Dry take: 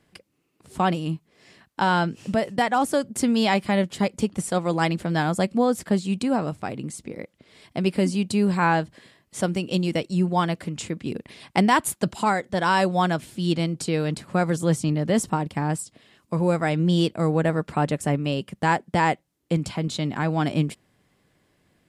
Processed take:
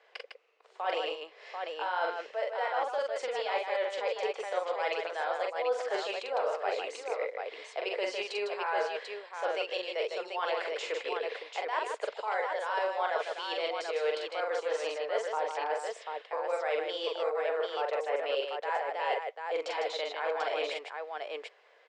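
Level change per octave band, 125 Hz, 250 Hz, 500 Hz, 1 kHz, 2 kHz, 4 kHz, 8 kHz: under -40 dB, -29.5 dB, -4.0 dB, -8.0 dB, -6.5 dB, -5.5 dB, -17.0 dB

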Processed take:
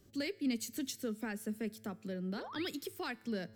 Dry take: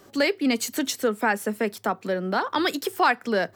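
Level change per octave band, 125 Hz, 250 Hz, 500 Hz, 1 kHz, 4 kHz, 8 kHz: -8.0 dB, -10.5 dB, -17.0 dB, -23.5 dB, -14.0 dB, -13.0 dB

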